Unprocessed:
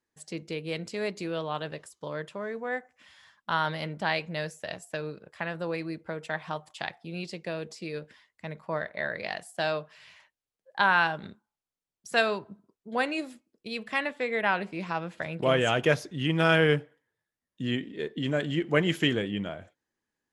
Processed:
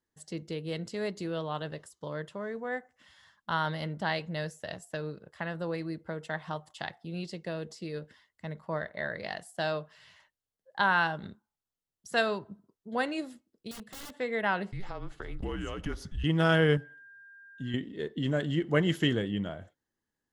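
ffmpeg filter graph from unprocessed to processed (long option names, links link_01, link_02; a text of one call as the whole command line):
ffmpeg -i in.wav -filter_complex "[0:a]asettb=1/sr,asplit=3[link_01][link_02][link_03];[link_01]atrim=end=13.714[link_04];[link_02]atrim=start=13.71:end=14.14,asetpts=PTS-STARTPTS,afade=type=in:duration=0.004:curve=qsin,afade=type=out:start_time=0.426:duration=0.004:curve=qsin,highpass=frequency=69:poles=1,equalizer=frequency=1200:width=0.3:gain=-9,aeval=exprs='(mod(63.1*val(0)+1,2)-1)/63.1':channel_layout=same[link_05];[link_03]atrim=start=14.136[link_06];[link_04][link_05]acrossfade=duration=0.004:curve1=hsin:curve2=qsin[link_07];[link_07][link_06]acrossfade=duration=0.004:curve1=qsin:curve2=hsin,asettb=1/sr,asplit=3[link_08][link_09][link_10];[link_08]atrim=end=14.724[link_11];[link_09]atrim=start=14.72:end=16.24,asetpts=PTS-STARTPTS,afade=type=in:duration=0.004:curve=qsin,afade=type=out:start_time=1.516:duration=0.004:curve=qsin,acompressor=threshold=-35dB:ratio=2.5:attack=3.2:release=140:knee=1:detection=peak,afreqshift=-190[link_12];[link_10]atrim=start=16.236[link_13];[link_11][link_12]acrossfade=duration=0.004:curve1=hsin:curve2=qsin[link_14];[link_14][link_13]acrossfade=duration=0.004:curve1=qsin:curve2=hsin,asettb=1/sr,asplit=3[link_15][link_16][link_17];[link_15]atrim=end=16.774[link_18];[link_16]atrim=start=16.77:end=17.74,asetpts=PTS-STARTPTS,afade=type=in:duration=0.004:curve=qsin,afade=type=out:start_time=0.966:duration=0.004:curve=qsin,aecho=1:1:7.3:0.7,atrim=end_sample=42777,acompressor=threshold=-48dB:ratio=1.5:attack=3.2:release=140:knee=1:detection=peak,aeval=exprs='val(0)+0.00447*sin(2*PI*1600*n/s)':channel_layout=same[link_19];[link_17]atrim=start=17.736[link_20];[link_18][link_19]acrossfade=duration=0.004:curve1=hsin:curve2=qsin[link_21];[link_21][link_20]acrossfade=duration=0.004:curve1=qsin:curve2=hsin,lowshelf=frequency=170:gain=7.5,bandreject=frequency=2400:width=5.9,volume=-3dB" out.wav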